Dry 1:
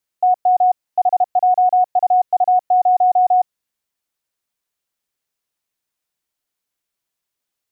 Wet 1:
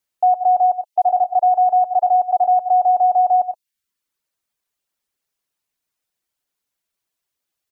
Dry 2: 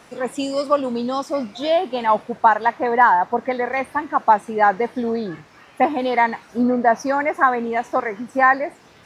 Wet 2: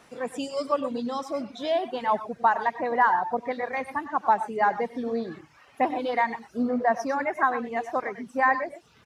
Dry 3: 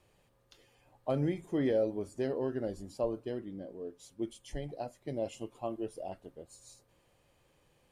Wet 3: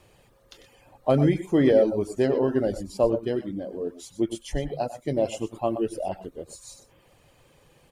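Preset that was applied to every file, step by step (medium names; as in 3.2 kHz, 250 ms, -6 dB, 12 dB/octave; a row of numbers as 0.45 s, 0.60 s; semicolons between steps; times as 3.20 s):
multi-tap echo 68/96/122 ms -18.5/-10/-11.5 dB; reverb removal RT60 0.52 s; peak normalisation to -9 dBFS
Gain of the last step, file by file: +0.5 dB, -7.0 dB, +11.5 dB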